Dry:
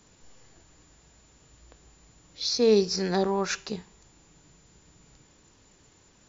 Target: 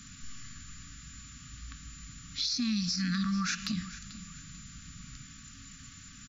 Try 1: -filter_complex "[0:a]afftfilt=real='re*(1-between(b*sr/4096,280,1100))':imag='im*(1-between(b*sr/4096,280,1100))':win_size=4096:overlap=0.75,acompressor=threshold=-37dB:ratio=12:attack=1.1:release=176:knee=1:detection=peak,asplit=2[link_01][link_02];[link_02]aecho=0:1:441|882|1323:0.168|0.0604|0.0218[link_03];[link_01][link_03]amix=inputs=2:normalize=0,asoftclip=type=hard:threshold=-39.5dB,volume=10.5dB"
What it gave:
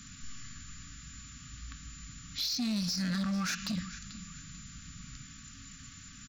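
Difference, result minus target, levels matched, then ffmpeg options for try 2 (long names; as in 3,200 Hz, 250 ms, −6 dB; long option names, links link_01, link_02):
hard clipping: distortion +22 dB
-filter_complex "[0:a]afftfilt=real='re*(1-between(b*sr/4096,280,1100))':imag='im*(1-between(b*sr/4096,280,1100))':win_size=4096:overlap=0.75,acompressor=threshold=-37dB:ratio=12:attack=1.1:release=176:knee=1:detection=peak,asplit=2[link_01][link_02];[link_02]aecho=0:1:441|882|1323:0.168|0.0604|0.0218[link_03];[link_01][link_03]amix=inputs=2:normalize=0,asoftclip=type=hard:threshold=-29dB,volume=10.5dB"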